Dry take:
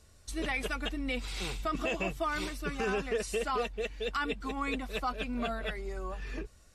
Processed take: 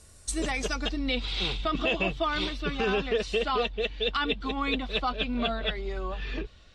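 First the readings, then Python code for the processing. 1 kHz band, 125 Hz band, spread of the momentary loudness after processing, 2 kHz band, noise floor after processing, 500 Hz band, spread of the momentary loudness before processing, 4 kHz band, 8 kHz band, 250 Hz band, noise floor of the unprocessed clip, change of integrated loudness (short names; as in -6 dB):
+4.0 dB, +5.0 dB, 7 LU, +4.0 dB, -53 dBFS, +5.0 dB, 7 LU, +10.0 dB, +5.0 dB, +5.0 dB, -58 dBFS, +5.5 dB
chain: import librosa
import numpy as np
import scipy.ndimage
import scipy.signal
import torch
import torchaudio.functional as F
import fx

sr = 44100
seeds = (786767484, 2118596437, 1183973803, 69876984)

y = fx.dynamic_eq(x, sr, hz=2100.0, q=0.9, threshold_db=-48.0, ratio=4.0, max_db=-5)
y = fx.filter_sweep_lowpass(y, sr, from_hz=9900.0, to_hz=3500.0, start_s=0.16, end_s=1.24, q=3.3)
y = y * 10.0 ** (5.0 / 20.0)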